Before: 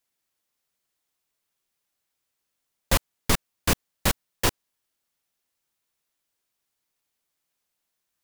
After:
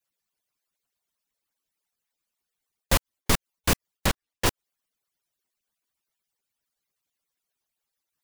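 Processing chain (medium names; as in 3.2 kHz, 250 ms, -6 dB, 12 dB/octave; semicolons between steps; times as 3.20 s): harmonic-percussive separation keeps percussive; 4.06–4.46 s: treble shelf 7.7 kHz -9.5 dB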